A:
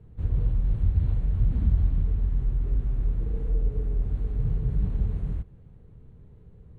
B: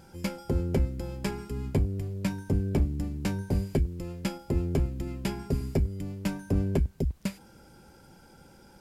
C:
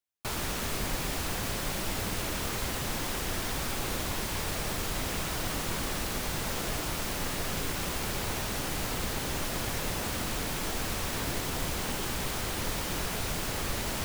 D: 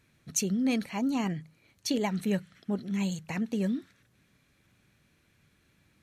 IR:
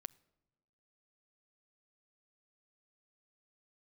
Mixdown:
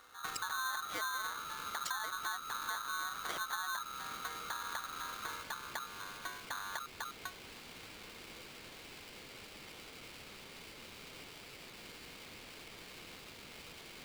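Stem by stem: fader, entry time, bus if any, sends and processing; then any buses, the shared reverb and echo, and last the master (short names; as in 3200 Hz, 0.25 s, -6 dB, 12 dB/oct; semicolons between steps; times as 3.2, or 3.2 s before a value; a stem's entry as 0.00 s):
-16.0 dB, 0.00 s, no bus, no send, soft clip -28 dBFS, distortion -8 dB
-5.5 dB, 0.00 s, bus A, no send, LPF 1100 Hz; low shelf 220 Hz -11.5 dB
-12.0 dB, 0.00 s, bus A, no send, Chebyshev band-pass 800–3500 Hz, order 5
+2.0 dB, 0.00 s, bus A, no send, treble ducked by the level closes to 430 Hz, closed at -25 dBFS; bell 170 Hz -12.5 dB 0.32 oct
bus A: 0.0 dB, compressor 4:1, threshold -39 dBFS, peak gain reduction 13 dB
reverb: off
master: polarity switched at an audio rate 1300 Hz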